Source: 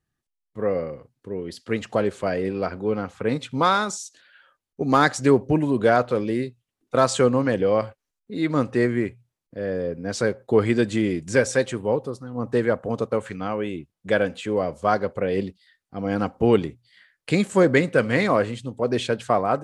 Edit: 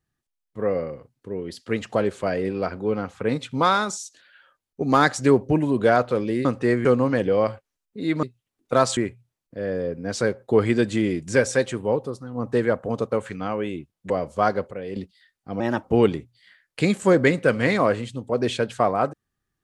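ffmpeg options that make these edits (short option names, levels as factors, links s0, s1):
-filter_complex "[0:a]asplit=10[s0][s1][s2][s3][s4][s5][s6][s7][s8][s9];[s0]atrim=end=6.452[s10];[s1]atrim=start=8.568:end=8.972[s11];[s2]atrim=start=7.188:end=8.572[s12];[s3]atrim=start=6.448:end=7.192[s13];[s4]atrim=start=8.968:end=14.102[s14];[s5]atrim=start=14.558:end=15.172[s15];[s6]atrim=start=15.168:end=15.422,asetpts=PTS-STARTPTS,volume=0.355[s16];[s7]atrim=start=15.418:end=16.064[s17];[s8]atrim=start=16.06:end=16.33,asetpts=PTS-STARTPTS,asetrate=51597,aresample=44100[s18];[s9]atrim=start=16.326[s19];[s10][s11]acrossfade=d=0.004:c1=hsin:c2=hsin[s20];[s20][s12]acrossfade=d=0.004:c1=hsin:c2=hsin[s21];[s21][s13]acrossfade=d=0.004:c1=hsin:c2=hsin[s22];[s22][s14]acrossfade=d=0.004:c1=hsin:c2=hsin[s23];[s23][s15]acrossfade=d=0.004:c1=hsin:c2=hsin[s24];[s24][s16]acrossfade=d=0.004:c1=hsin:c2=hsin[s25];[s25][s17]acrossfade=d=0.004:c1=hsin:c2=hsin[s26];[s26][s18]acrossfade=d=0.004:c1=hsin:c2=hsin[s27];[s27][s19]acrossfade=d=0.004:c1=hsin:c2=hsin"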